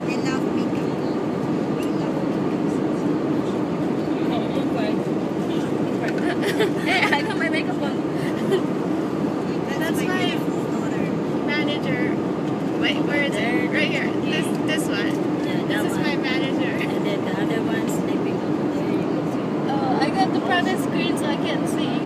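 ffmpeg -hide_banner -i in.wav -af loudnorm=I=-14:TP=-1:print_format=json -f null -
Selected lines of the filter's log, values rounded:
"input_i" : "-22.4",
"input_tp" : "-5.8",
"input_lra" : "1.5",
"input_thresh" : "-32.4",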